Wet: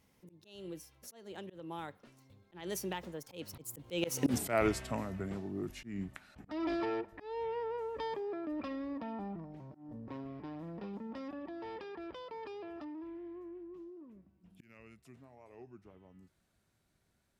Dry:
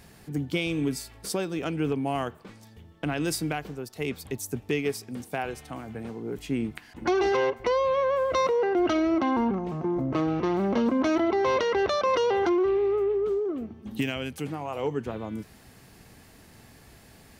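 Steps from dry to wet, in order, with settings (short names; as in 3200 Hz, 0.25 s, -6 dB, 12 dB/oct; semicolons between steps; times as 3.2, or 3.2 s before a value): Doppler pass-by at 4.34, 58 m/s, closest 5.9 m; auto swell 0.202 s; gain +15.5 dB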